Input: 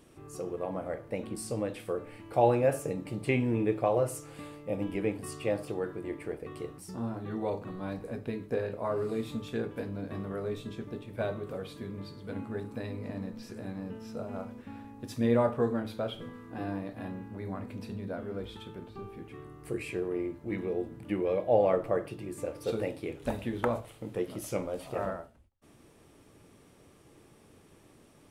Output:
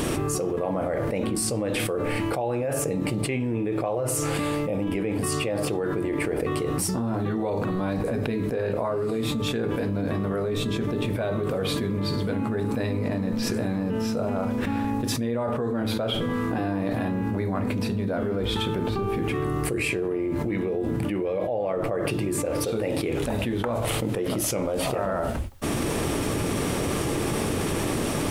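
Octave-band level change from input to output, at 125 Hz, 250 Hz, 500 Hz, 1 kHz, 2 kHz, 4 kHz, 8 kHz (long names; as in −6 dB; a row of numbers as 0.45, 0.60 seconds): +10.5, +9.5, +5.5, +6.0, +10.5, +16.5, +16.5 decibels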